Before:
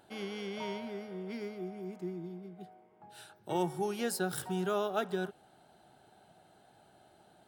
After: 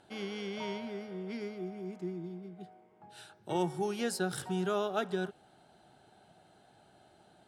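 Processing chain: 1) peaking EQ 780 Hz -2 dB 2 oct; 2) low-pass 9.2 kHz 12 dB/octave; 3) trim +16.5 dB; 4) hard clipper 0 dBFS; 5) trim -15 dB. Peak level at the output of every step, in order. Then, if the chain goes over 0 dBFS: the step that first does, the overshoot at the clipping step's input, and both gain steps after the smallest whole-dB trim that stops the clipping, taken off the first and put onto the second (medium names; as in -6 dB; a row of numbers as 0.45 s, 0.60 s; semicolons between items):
-21.0 dBFS, -21.0 dBFS, -4.5 dBFS, -4.5 dBFS, -19.5 dBFS; nothing clips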